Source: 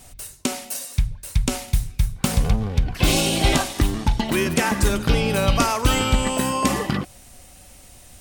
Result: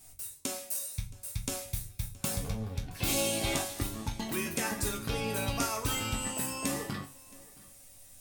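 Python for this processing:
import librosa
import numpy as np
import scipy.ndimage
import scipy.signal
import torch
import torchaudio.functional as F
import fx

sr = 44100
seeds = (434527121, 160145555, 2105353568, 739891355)

y = fx.high_shelf(x, sr, hz=7400.0, db=12.0)
y = fx.notch(y, sr, hz=3000.0, q=20.0)
y = fx.resonator_bank(y, sr, root=42, chord='minor', decay_s=0.25)
y = y + 10.0 ** (-23.0 / 20.0) * np.pad(y, (int(671 * sr / 1000.0), 0))[:len(y)]
y = y * librosa.db_to_amplitude(-2.0)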